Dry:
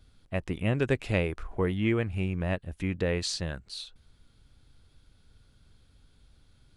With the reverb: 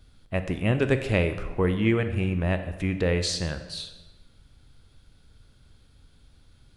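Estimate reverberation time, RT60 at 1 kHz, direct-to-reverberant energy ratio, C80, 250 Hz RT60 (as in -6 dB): 1.2 s, 1.2 s, 8.5 dB, 12.0 dB, 1.3 s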